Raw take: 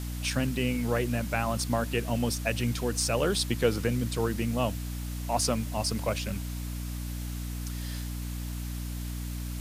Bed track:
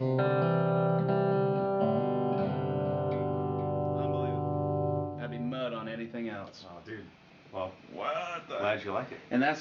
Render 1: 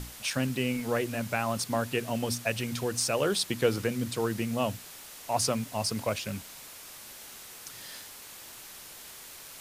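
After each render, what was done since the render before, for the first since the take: hum notches 60/120/180/240/300 Hz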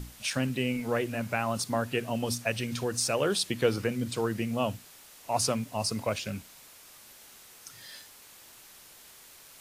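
noise print and reduce 6 dB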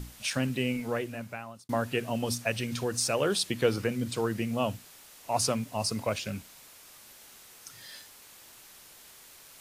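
0.70–1.69 s: fade out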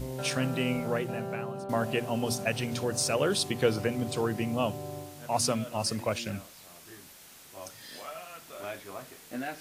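add bed track -9 dB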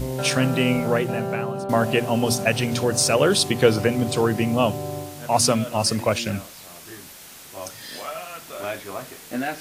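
trim +9 dB

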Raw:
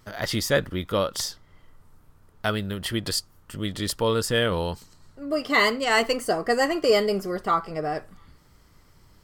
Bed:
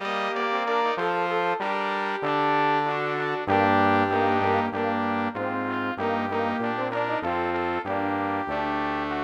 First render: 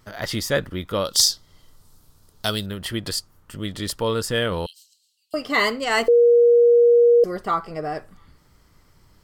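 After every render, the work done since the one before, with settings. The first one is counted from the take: 1.05–2.66 s: resonant high shelf 3 kHz +11 dB, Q 1.5; 4.66–5.34 s: Chebyshev high-pass 2.8 kHz, order 6; 6.08–7.24 s: bleep 475 Hz -10.5 dBFS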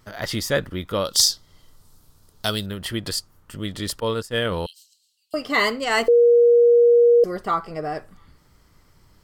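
4.00–4.45 s: expander -21 dBFS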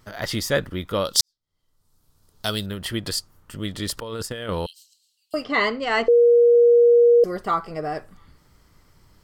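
1.21–2.62 s: fade in quadratic; 3.97–4.49 s: compressor with a negative ratio -31 dBFS; 5.44–6.55 s: distance through air 140 m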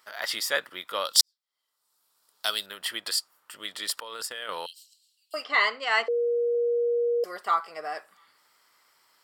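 high-pass 890 Hz 12 dB/octave; band-stop 6.3 kHz, Q 8.6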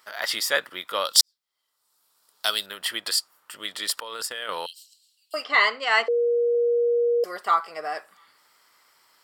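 trim +3.5 dB; peak limiter -2 dBFS, peak gain reduction 1.5 dB

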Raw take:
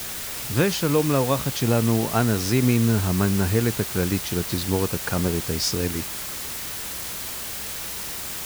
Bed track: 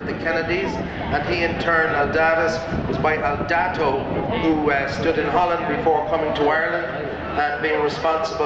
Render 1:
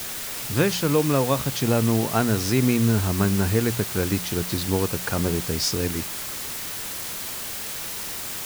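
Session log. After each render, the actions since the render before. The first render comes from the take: de-hum 60 Hz, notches 3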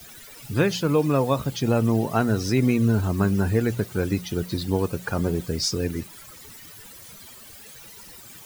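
noise reduction 16 dB, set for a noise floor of -32 dBFS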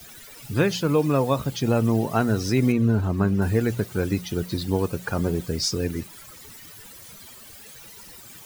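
2.72–3.42 s: treble shelf 4 kHz -11.5 dB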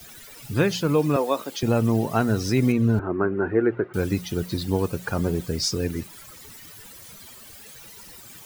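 1.16–1.63 s: high-pass 280 Hz 24 dB/octave; 2.99–3.94 s: cabinet simulation 190–2000 Hz, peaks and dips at 200 Hz -7 dB, 360 Hz +10 dB, 1.4 kHz +6 dB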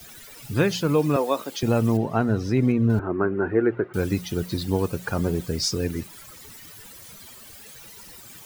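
1.97–2.90 s: low-pass 1.7 kHz 6 dB/octave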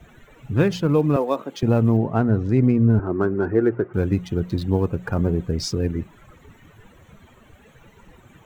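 local Wiener filter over 9 samples; tilt EQ -1.5 dB/octave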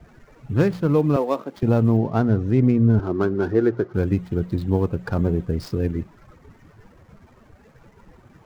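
median filter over 15 samples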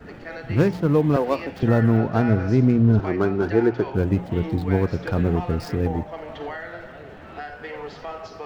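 add bed track -14.5 dB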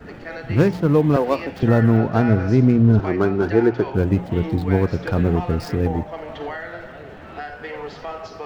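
trim +2.5 dB

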